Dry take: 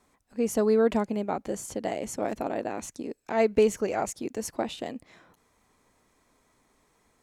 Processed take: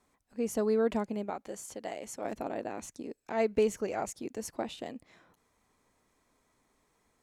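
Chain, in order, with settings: 1.30–2.25 s: bass shelf 350 Hz -10 dB; trim -5.5 dB

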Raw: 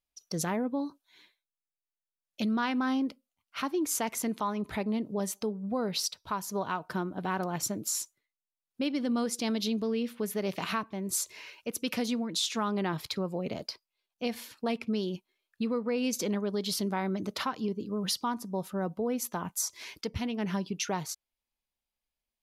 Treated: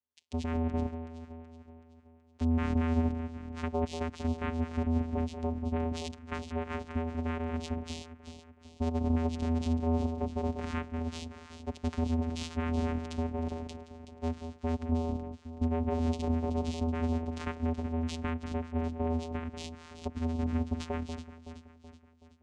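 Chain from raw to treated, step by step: echo whose repeats swap between lows and highs 188 ms, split 1.1 kHz, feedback 70%, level -8 dB; vocoder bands 4, square 81.6 Hz

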